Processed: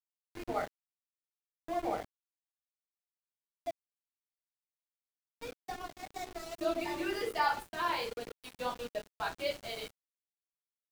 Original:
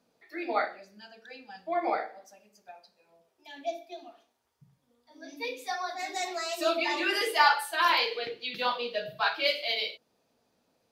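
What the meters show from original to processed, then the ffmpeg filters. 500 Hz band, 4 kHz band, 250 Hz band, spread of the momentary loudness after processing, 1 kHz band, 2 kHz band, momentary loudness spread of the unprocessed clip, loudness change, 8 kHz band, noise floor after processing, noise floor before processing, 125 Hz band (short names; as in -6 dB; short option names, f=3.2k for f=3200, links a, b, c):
-5.5 dB, -13.0 dB, -2.5 dB, 15 LU, -7.5 dB, -11.5 dB, 20 LU, -8.5 dB, -8.0 dB, under -85 dBFS, -74 dBFS, n/a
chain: -af "aeval=exprs='val(0)*gte(abs(val(0)),0.0266)':c=same,tiltshelf=f=760:g=7.5,volume=-6dB"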